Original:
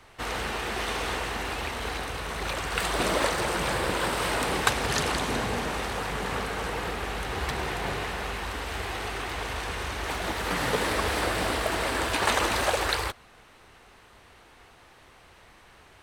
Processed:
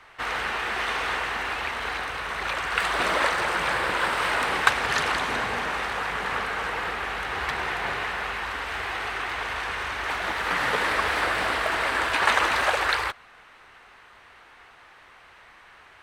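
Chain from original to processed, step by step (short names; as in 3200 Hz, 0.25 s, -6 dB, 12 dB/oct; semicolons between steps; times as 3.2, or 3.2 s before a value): bell 1600 Hz +14 dB 2.8 oct; gain -7.5 dB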